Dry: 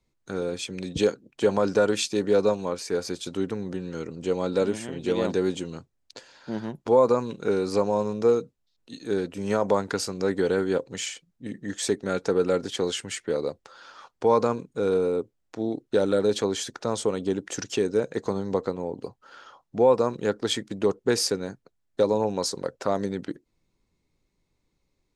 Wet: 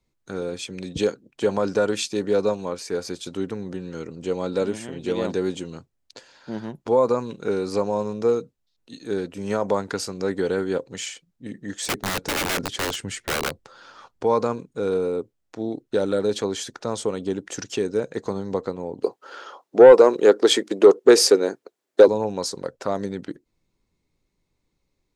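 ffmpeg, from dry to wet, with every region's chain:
ffmpeg -i in.wav -filter_complex "[0:a]asettb=1/sr,asplit=3[link_01][link_02][link_03];[link_01]atrim=end=11.854[link_04];[link_02]atrim=start=11.85:end=14.24,asetpts=PTS-STARTPTS,afade=type=in:duration=0.004:curve=qsin,afade=type=out:start_time=2.386:duration=0.004:curve=qsin,lowshelf=frequency=320:gain=9.5,aeval=exprs='(mod(8.91*val(0)+1,2)-1)/8.91':channel_layout=same[link_05];[link_03]atrim=start=14.236[link_06];[link_04][link_05]acrossfade=duration=0.004:curve1=hsin:curve2=qsin[link_07];[link_07][link_06]acrossfade=duration=0.004:curve1=qsin:curve2=hsin,asettb=1/sr,asplit=3[link_08][link_09][link_10];[link_08]atrim=end=19.034[link_11];[link_09]atrim=start=19.03:end=22.08,asetpts=PTS-STARTPTS,afade=type=in:duration=0.004:curve=qsin,afade=type=out:start_time=3.046:duration=0.004:curve=qsin,highpass=frequency=380:width_type=q:width=2.1,acontrast=89[link_12];[link_10]atrim=start=22.076[link_13];[link_11][link_12]acrossfade=duration=0.004:curve1=hsin:curve2=qsin[link_14];[link_14][link_13]acrossfade=duration=0.004:curve1=qsin:curve2=hsin" out.wav

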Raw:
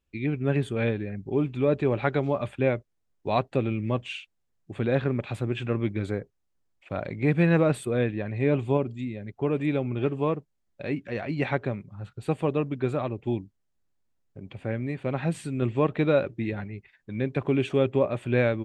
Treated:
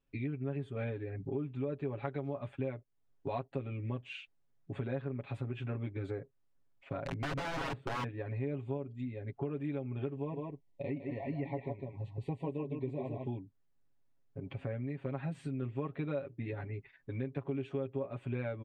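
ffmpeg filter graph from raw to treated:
ffmpeg -i in.wav -filter_complex "[0:a]asettb=1/sr,asplit=3[link_01][link_02][link_03];[link_01]atrim=end=7.034[link_04];[link_02]atrim=start=7.03:end=8.04,asetpts=PTS-STARTPTS,afade=type=in:duration=0.004:curve=qsin,afade=type=out:start_time=1.006:duration=0.004:curve=qsin,equalizer=frequency=200:width_type=o:width=2.8:gain=6.5,aeval=exprs='(mod(8.41*val(0)+1,2)-1)/8.41':channel_layout=same,adynamicsmooth=sensitivity=3:basefreq=1600[link_05];[link_03]atrim=start=8.036[link_06];[link_04][link_05]acrossfade=duration=0.004:curve1=hsin:curve2=qsin[link_07];[link_07][link_06]acrossfade=duration=0.004:curve1=qsin:curve2=hsin,asettb=1/sr,asplit=3[link_08][link_09][link_10];[link_08]atrim=end=10.164[link_11];[link_09]atrim=start=10.16:end=13.27,asetpts=PTS-STARTPTS,afade=type=in:duration=0.004:curve=qsin,afade=type=out:start_time=3.106:duration=0.004:curve=qsin,acrossover=split=2600[link_12][link_13];[link_13]acompressor=threshold=-53dB:ratio=4:attack=1:release=60[link_14];[link_12][link_14]amix=inputs=2:normalize=0,asuperstop=centerf=1400:order=20:qfactor=1.9,aecho=1:1:153|156:0.126|0.501,atrim=end_sample=137151[link_15];[link_10]atrim=start=13.266[link_16];[link_11][link_15]acrossfade=duration=0.004:curve1=hsin:curve2=qsin[link_17];[link_17][link_16]acrossfade=duration=0.004:curve1=qsin:curve2=hsin,aemphasis=mode=reproduction:type=75kf,aecho=1:1:7.3:0.97,acompressor=threshold=-34dB:ratio=4,volume=-2.5dB" out.wav

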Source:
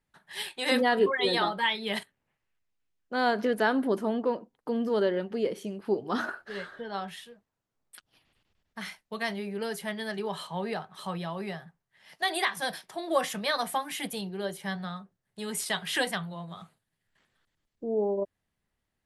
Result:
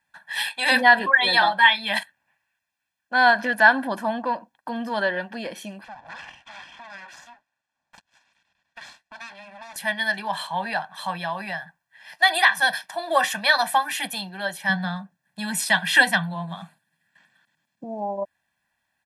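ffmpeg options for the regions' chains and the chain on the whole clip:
ffmpeg -i in.wav -filter_complex "[0:a]asettb=1/sr,asplit=3[link_01][link_02][link_03];[link_01]atrim=end=5.844[link_04];[link_02]atrim=start=5.84:end=9.76,asetpts=PTS-STARTPTS,afade=type=in:duration=0.004:curve=qsin,afade=type=out:start_time=3.916:duration=0.004:curve=qsin,aeval=exprs='abs(val(0))':channel_layout=same,acompressor=threshold=-45dB:ratio=3:attack=3.2:release=140:knee=1:detection=peak,lowpass=6900[link_05];[link_03]atrim=start=9.756[link_06];[link_04][link_05]acrossfade=duration=0.004:curve1=hsin:curve2=qsin[link_07];[link_07][link_06]acrossfade=duration=0.004:curve1=qsin:curve2=hsin,asettb=1/sr,asplit=3[link_08][link_09][link_10];[link_08]atrim=end=14.694[link_11];[link_09]atrim=start=14.69:end=17.84,asetpts=PTS-STARTPTS,afade=type=in:duration=0.004:curve=qsin,afade=type=out:start_time=3.146:duration=0.004:curve=qsin,highpass=130,equalizer=frequency=170:width_type=o:width=1.5:gain=11[link_12];[link_10]atrim=start=17.836[link_13];[link_11][link_12]acrossfade=duration=0.004:curve1=hsin:curve2=qsin[link_14];[link_14][link_13]acrossfade=duration=0.004:curve1=qsin:curve2=hsin,highpass=frequency=440:poles=1,equalizer=frequency=1600:width_type=o:width=1.4:gain=7,aecho=1:1:1.2:0.9,volume=4dB" out.wav

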